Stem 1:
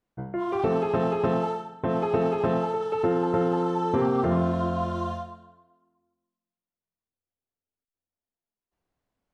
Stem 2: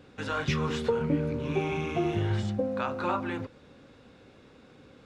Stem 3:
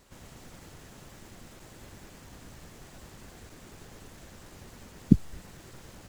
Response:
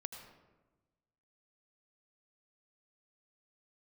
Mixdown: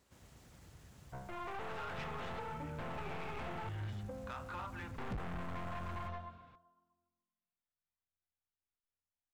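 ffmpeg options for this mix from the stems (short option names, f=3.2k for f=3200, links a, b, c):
-filter_complex "[0:a]aeval=exprs='(tanh(31.6*val(0)+0.5)-tanh(0.5))/31.6':c=same,adelay=950,volume=-0.5dB,asplit=3[a][b][c];[a]atrim=end=3.69,asetpts=PTS-STARTPTS,afade=t=out:st=3.686:d=0.004:c=hsin[d];[b]atrim=start=3.69:end=4.98,asetpts=PTS-STARTPTS,volume=0[e];[c]atrim=start=4.98,asetpts=PTS-STARTPTS,afade=t=in:d=0.004:c=hsin[f];[d][e][f]concat=n=3:v=0:a=1[g];[1:a]adelay=1500,volume=-6dB[h];[2:a]highpass=f=43:w=0.5412,highpass=f=43:w=1.3066,volume=-11.5dB[i];[g][h]amix=inputs=2:normalize=0,acrossover=split=540 3200:gain=0.158 1 0.2[j][k][l];[j][k][l]amix=inputs=3:normalize=0,acompressor=threshold=-36dB:ratio=6,volume=0dB[m];[i][m]amix=inputs=2:normalize=0,asubboost=boost=8:cutoff=160,asoftclip=type=tanh:threshold=-37dB"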